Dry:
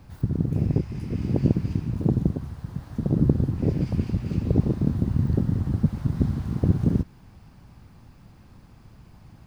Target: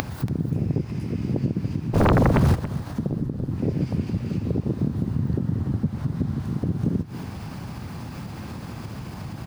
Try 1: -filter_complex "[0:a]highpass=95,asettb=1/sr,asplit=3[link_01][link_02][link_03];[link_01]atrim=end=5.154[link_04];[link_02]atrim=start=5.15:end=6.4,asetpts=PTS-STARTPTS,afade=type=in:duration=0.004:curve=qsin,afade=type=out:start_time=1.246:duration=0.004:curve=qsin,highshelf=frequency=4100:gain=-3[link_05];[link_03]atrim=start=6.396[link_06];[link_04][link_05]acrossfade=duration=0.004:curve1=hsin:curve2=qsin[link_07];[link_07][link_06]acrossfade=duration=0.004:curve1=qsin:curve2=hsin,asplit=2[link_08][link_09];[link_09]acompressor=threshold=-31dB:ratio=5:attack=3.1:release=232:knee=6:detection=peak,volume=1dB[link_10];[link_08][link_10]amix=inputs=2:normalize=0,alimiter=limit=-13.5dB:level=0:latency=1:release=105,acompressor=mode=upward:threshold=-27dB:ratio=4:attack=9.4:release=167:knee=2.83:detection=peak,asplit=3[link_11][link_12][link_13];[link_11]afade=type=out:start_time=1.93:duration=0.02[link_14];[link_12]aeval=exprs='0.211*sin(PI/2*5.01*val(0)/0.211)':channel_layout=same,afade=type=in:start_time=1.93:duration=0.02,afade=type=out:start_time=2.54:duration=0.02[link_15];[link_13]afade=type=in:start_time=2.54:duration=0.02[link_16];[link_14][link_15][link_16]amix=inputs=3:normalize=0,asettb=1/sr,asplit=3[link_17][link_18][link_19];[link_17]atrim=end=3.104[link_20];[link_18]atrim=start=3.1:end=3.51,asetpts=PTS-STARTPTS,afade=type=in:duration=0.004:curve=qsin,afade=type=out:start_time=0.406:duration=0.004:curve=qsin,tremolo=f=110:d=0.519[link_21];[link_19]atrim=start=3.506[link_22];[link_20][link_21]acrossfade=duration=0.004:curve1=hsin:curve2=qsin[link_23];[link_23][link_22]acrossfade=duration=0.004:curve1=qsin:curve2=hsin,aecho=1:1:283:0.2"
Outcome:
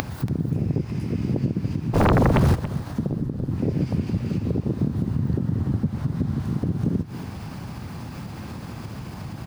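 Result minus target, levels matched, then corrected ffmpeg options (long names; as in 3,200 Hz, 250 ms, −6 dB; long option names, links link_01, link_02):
downward compressor: peak gain reduction −7 dB
-filter_complex "[0:a]highpass=95,asettb=1/sr,asplit=3[link_01][link_02][link_03];[link_01]atrim=end=5.154[link_04];[link_02]atrim=start=5.15:end=6.4,asetpts=PTS-STARTPTS,afade=type=in:duration=0.004:curve=qsin,afade=type=out:start_time=1.246:duration=0.004:curve=qsin,highshelf=frequency=4100:gain=-3[link_05];[link_03]atrim=start=6.396[link_06];[link_04][link_05]acrossfade=duration=0.004:curve1=hsin:curve2=qsin[link_07];[link_07][link_06]acrossfade=duration=0.004:curve1=qsin:curve2=hsin,asplit=2[link_08][link_09];[link_09]acompressor=threshold=-40dB:ratio=5:attack=3.1:release=232:knee=6:detection=peak,volume=1dB[link_10];[link_08][link_10]amix=inputs=2:normalize=0,alimiter=limit=-13.5dB:level=0:latency=1:release=105,acompressor=mode=upward:threshold=-27dB:ratio=4:attack=9.4:release=167:knee=2.83:detection=peak,asplit=3[link_11][link_12][link_13];[link_11]afade=type=out:start_time=1.93:duration=0.02[link_14];[link_12]aeval=exprs='0.211*sin(PI/2*5.01*val(0)/0.211)':channel_layout=same,afade=type=in:start_time=1.93:duration=0.02,afade=type=out:start_time=2.54:duration=0.02[link_15];[link_13]afade=type=in:start_time=2.54:duration=0.02[link_16];[link_14][link_15][link_16]amix=inputs=3:normalize=0,asettb=1/sr,asplit=3[link_17][link_18][link_19];[link_17]atrim=end=3.104[link_20];[link_18]atrim=start=3.1:end=3.51,asetpts=PTS-STARTPTS,afade=type=in:duration=0.004:curve=qsin,afade=type=out:start_time=0.406:duration=0.004:curve=qsin,tremolo=f=110:d=0.519[link_21];[link_19]atrim=start=3.506[link_22];[link_20][link_21]acrossfade=duration=0.004:curve1=hsin:curve2=qsin[link_23];[link_23][link_22]acrossfade=duration=0.004:curve1=qsin:curve2=hsin,aecho=1:1:283:0.2"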